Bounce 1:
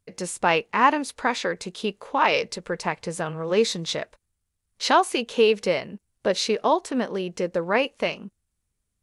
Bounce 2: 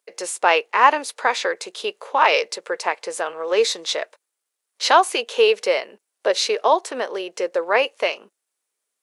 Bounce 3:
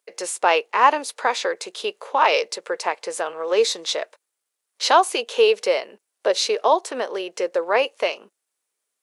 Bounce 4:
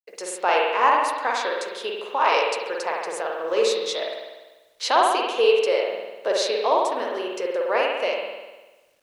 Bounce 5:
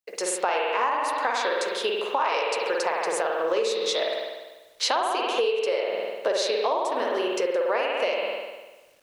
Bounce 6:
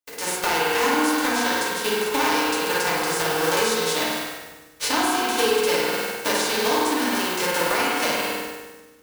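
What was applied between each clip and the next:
HPF 410 Hz 24 dB/oct; gain +4.5 dB
dynamic EQ 1900 Hz, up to -4 dB, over -31 dBFS, Q 1.2
spring tank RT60 1.2 s, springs 49 ms, chirp 25 ms, DRR -1.5 dB; requantised 10-bit, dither none; gain -5 dB
compressor 12:1, threshold -26 dBFS, peak gain reduction 14 dB; gain +5 dB
spectral whitening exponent 0.3; FDN reverb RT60 1.2 s, low-frequency decay 1.4×, high-frequency decay 0.3×, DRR -4 dB; gain -2.5 dB

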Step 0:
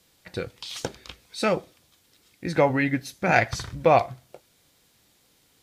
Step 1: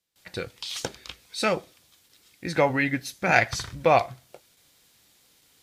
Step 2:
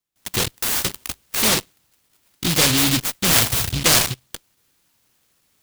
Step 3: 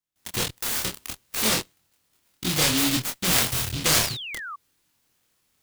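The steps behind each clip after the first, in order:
gate with hold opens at -52 dBFS; tilt shelf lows -3 dB, about 1100 Hz
in parallel at -3 dB: fuzz box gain 38 dB, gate -43 dBFS; on the sum: noise-modulated delay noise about 3400 Hz, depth 0.47 ms; gain -2.5 dB
chorus 0.6 Hz, depth 4.9 ms; painted sound fall, 3.94–4.56, 1100–7400 Hz -33 dBFS; gain -2 dB

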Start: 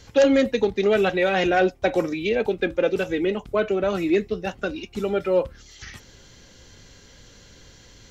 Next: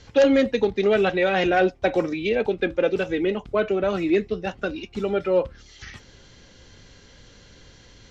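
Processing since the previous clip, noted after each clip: LPF 5500 Hz 12 dB/oct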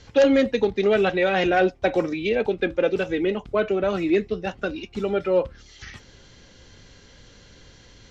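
nothing audible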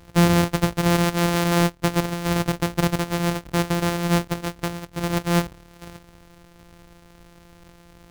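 sample sorter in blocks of 256 samples

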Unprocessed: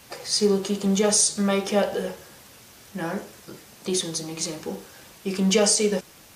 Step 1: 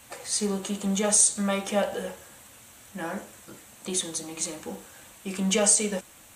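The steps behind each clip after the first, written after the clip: thirty-one-band EQ 160 Hz -9 dB, 400 Hz -9 dB, 5000 Hz -10 dB, 8000 Hz +8 dB; gain -2 dB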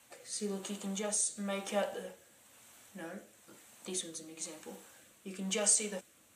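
HPF 220 Hz 6 dB/oct; rotary speaker horn 1 Hz; gain -7 dB

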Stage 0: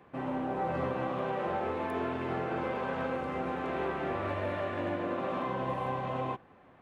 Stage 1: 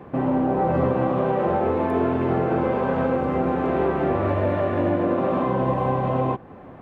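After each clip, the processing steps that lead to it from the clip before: tilt shelf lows +7 dB, about 1200 Hz; in parallel at +2.5 dB: compressor, threshold -38 dBFS, peak gain reduction 13.5 dB; on the sum: gain +4.5 dB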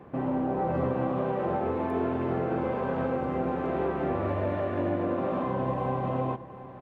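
echo 0.72 s -15.5 dB; gain -7 dB

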